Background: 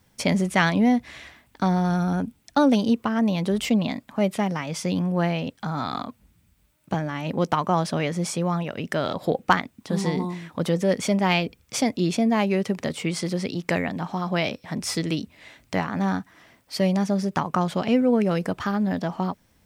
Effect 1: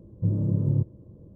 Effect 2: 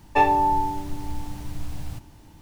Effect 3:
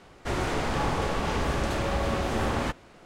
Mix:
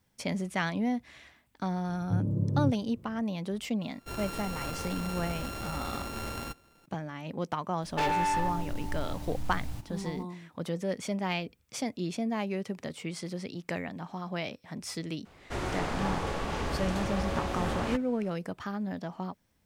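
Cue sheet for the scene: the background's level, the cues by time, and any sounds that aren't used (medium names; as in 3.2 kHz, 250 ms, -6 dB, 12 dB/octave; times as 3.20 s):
background -10.5 dB
1.88 s: add 1 -4.5 dB
3.81 s: add 3 -10 dB + sorted samples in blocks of 32 samples
7.82 s: add 2 -4 dB + hard clipper -22 dBFS
15.25 s: add 3 -5 dB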